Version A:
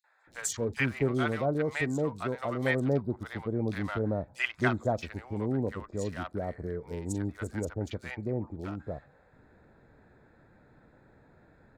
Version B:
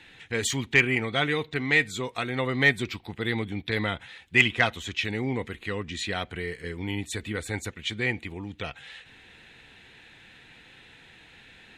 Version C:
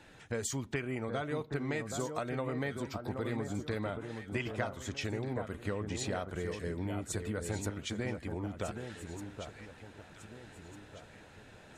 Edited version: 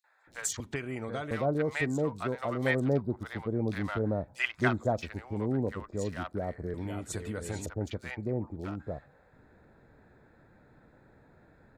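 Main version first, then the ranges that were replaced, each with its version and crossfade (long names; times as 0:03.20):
A
0:00.60–0:01.31: punch in from C
0:06.74–0:07.66: punch in from C
not used: B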